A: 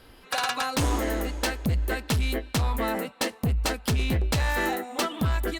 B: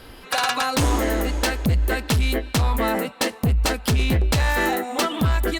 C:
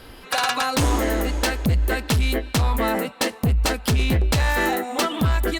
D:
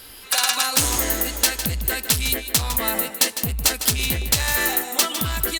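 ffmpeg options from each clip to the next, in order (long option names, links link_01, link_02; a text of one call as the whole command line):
ffmpeg -i in.wav -af "alimiter=limit=-24dB:level=0:latency=1:release=99,volume=9dB" out.wav
ffmpeg -i in.wav -af anull out.wav
ffmpeg -i in.wav -filter_complex "[0:a]crystalizer=i=7:c=0,asplit=2[link_01][link_02];[link_02]aecho=0:1:155:0.299[link_03];[link_01][link_03]amix=inputs=2:normalize=0,volume=-7.5dB" out.wav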